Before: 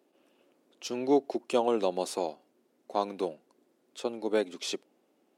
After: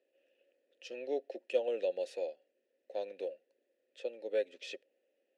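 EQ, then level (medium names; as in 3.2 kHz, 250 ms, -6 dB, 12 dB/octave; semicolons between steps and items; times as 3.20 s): vowel filter e; treble shelf 2.3 kHz +10.5 dB; 0.0 dB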